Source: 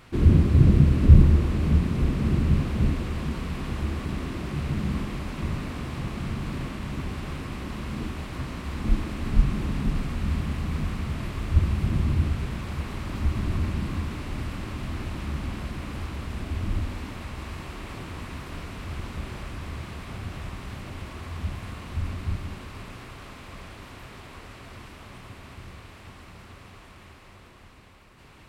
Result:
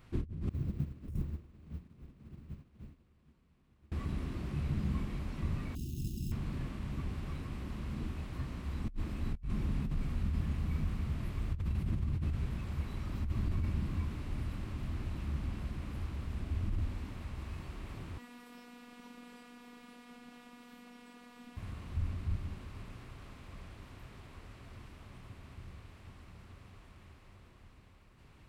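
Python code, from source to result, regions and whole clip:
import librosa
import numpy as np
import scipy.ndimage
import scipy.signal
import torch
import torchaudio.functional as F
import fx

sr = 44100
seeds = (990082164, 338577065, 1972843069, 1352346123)

y = fx.chain(x, sr, fx.law_mismatch(coded='mu'),
    fx.low_shelf(hz=98.0, db=-8.0),
    fx.upward_expand(threshold_db=-31.0, expansion=2.5), at=(0.49, 3.92))
y = fx.chain(y, sr, fx.high_shelf(hz=5600.0, db=-12.0),
    fx.sample_hold(seeds[0], rate_hz=2600.0, jitter_pct=0),
    fx.brickwall_bandstop(low_hz=400.0, high_hz=2500.0), at=(5.75, 6.32))
y = fx.chain(y, sr, fx.highpass(hz=190.0, slope=24),
    fx.robotise(hz=242.0), at=(18.18, 21.57))
y = fx.noise_reduce_blind(y, sr, reduce_db=10)
y = fx.low_shelf(y, sr, hz=220.0, db=8.5)
y = fx.over_compress(y, sr, threshold_db=-28.0, ratio=-1.0)
y = y * 10.0 ** (-6.0 / 20.0)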